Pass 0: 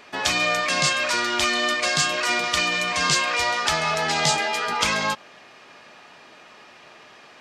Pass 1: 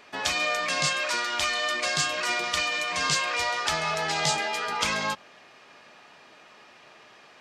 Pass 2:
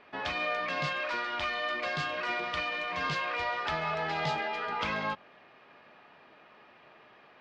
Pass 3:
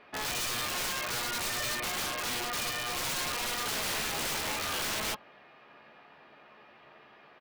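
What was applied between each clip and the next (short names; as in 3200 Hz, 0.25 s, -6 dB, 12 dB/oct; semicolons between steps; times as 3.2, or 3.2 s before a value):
notches 60/120/180/240/300/360 Hz; gain -4.5 dB
air absorption 330 m; gain -2 dB
doubler 14 ms -7 dB; wrapped overs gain 28 dB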